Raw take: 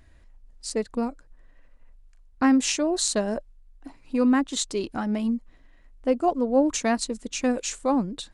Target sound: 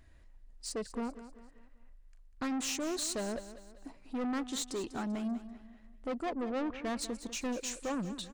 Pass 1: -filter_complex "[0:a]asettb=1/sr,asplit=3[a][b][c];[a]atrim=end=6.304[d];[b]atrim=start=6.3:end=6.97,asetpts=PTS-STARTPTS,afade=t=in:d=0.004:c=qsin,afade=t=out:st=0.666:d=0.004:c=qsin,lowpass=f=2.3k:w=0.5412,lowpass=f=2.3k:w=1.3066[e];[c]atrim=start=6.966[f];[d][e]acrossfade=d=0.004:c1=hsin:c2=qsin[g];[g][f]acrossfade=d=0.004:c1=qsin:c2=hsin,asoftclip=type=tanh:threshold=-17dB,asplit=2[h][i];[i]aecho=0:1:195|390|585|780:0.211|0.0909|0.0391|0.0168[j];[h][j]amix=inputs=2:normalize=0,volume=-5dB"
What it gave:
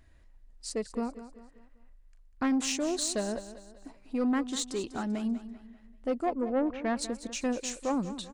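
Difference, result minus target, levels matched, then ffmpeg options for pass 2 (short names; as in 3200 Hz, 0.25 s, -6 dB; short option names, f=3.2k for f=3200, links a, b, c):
soft clip: distortion -9 dB
-filter_complex "[0:a]asettb=1/sr,asplit=3[a][b][c];[a]atrim=end=6.304[d];[b]atrim=start=6.3:end=6.97,asetpts=PTS-STARTPTS,afade=t=in:d=0.004:c=qsin,afade=t=out:st=0.666:d=0.004:c=qsin,lowpass=f=2.3k:w=0.5412,lowpass=f=2.3k:w=1.3066[e];[c]atrim=start=6.966[f];[d][e]acrossfade=d=0.004:c1=hsin:c2=qsin[g];[g][f]acrossfade=d=0.004:c1=qsin:c2=hsin,asoftclip=type=tanh:threshold=-27dB,asplit=2[h][i];[i]aecho=0:1:195|390|585|780:0.211|0.0909|0.0391|0.0168[j];[h][j]amix=inputs=2:normalize=0,volume=-5dB"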